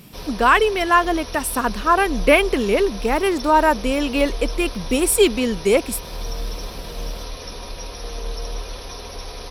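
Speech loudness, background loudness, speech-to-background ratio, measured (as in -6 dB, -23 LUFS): -18.5 LUFS, -32.5 LUFS, 14.0 dB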